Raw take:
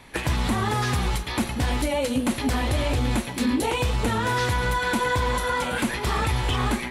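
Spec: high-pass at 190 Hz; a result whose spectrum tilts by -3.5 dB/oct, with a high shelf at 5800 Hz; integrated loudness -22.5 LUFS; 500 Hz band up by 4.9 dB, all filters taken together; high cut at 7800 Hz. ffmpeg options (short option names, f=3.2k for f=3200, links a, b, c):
-af "highpass=190,lowpass=7.8k,equalizer=f=500:t=o:g=5.5,highshelf=f=5.8k:g=9,volume=1.5dB"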